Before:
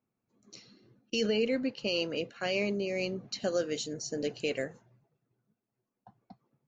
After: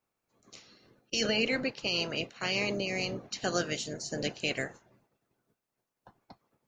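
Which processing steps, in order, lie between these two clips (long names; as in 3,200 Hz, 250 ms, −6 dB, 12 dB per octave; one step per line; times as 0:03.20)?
ceiling on every frequency bin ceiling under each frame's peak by 16 dB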